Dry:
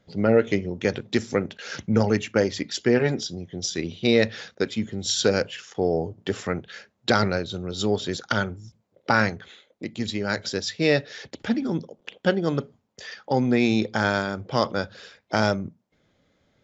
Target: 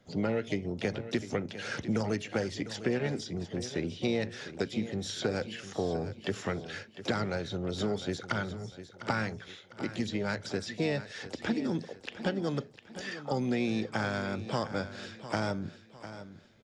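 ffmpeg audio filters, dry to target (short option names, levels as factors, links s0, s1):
-filter_complex "[0:a]acrossover=split=200|2400[s0][s1][s2];[s0]acompressor=threshold=0.0141:ratio=4[s3];[s1]acompressor=threshold=0.0251:ratio=4[s4];[s2]acompressor=threshold=0.00562:ratio=4[s5];[s3][s4][s5]amix=inputs=3:normalize=0,asplit=2[s6][s7];[s7]asetrate=66075,aresample=44100,atempo=0.66742,volume=0.224[s8];[s6][s8]amix=inputs=2:normalize=0,aecho=1:1:703|1406|2109|2812:0.224|0.0828|0.0306|0.0113"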